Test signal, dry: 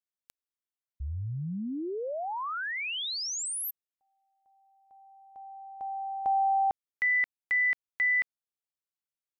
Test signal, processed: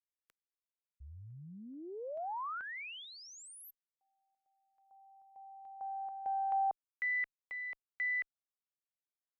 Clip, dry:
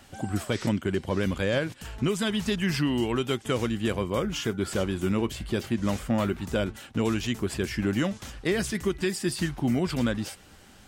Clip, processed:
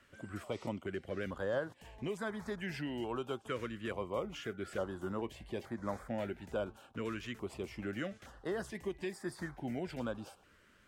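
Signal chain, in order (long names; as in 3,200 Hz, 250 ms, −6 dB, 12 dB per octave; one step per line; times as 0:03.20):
harmonic generator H 6 −42 dB, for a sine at −14.5 dBFS
three-way crossover with the lows and the highs turned down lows −12 dB, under 480 Hz, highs −15 dB, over 2,200 Hz
notch on a step sequencer 2.3 Hz 790–2,800 Hz
level −4 dB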